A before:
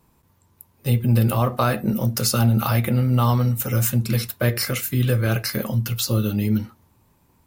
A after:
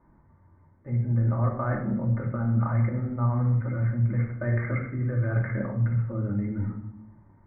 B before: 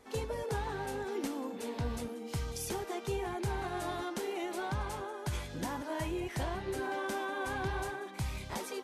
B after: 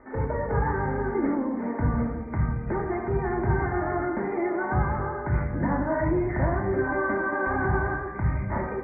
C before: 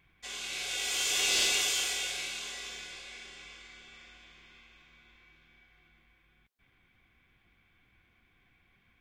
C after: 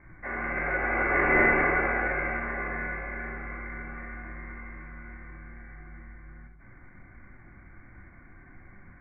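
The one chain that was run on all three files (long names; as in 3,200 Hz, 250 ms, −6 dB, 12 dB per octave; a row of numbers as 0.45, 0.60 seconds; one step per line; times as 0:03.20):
Butterworth low-pass 2,100 Hz 96 dB per octave
reversed playback
downward compressor 6 to 1, threshold −27 dBFS
reversed playback
rectangular room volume 1,900 cubic metres, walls furnished, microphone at 2.6 metres
loudness normalisation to −27 LKFS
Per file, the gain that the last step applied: −1.5, +7.5, +14.5 decibels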